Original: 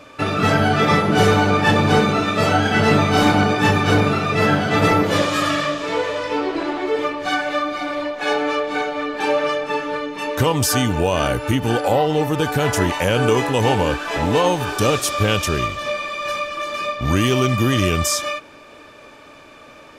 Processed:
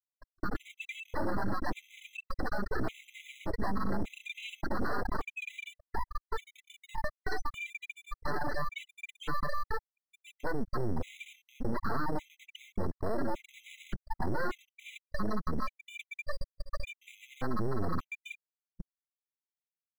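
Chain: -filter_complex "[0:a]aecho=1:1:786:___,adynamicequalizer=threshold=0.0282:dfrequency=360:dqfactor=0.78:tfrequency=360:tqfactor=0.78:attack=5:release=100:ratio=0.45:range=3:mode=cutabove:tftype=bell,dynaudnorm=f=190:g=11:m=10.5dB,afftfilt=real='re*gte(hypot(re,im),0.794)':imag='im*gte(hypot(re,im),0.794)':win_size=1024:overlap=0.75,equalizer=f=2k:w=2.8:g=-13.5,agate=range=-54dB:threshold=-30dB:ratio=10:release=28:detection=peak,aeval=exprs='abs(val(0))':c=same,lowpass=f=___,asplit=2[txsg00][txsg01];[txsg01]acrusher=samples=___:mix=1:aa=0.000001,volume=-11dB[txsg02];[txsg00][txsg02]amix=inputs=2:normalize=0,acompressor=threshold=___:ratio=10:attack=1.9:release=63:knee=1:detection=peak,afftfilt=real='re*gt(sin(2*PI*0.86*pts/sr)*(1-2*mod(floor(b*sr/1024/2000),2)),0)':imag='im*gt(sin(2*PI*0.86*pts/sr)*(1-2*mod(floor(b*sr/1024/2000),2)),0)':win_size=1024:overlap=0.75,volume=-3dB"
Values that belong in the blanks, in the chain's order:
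0.316, 5.8k, 15, -22dB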